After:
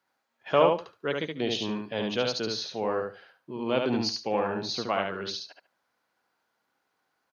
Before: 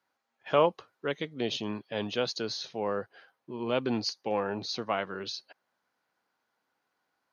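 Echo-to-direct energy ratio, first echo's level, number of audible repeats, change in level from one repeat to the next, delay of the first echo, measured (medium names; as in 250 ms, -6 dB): -3.5 dB, -3.5 dB, 3, -15.5 dB, 72 ms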